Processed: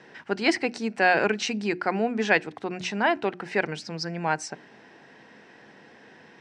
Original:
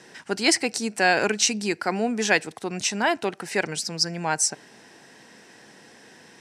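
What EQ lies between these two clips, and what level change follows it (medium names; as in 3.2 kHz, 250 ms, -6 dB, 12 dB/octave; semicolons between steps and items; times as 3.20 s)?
low-pass 2.9 kHz 12 dB/octave; hum notches 60/120/180/240/300/360 Hz; 0.0 dB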